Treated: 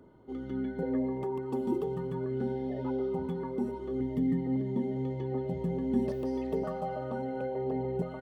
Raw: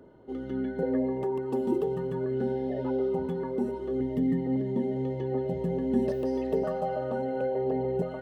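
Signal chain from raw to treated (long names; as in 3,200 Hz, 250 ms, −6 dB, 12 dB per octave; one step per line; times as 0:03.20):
comb filter 0.9 ms, depth 34%
level −3 dB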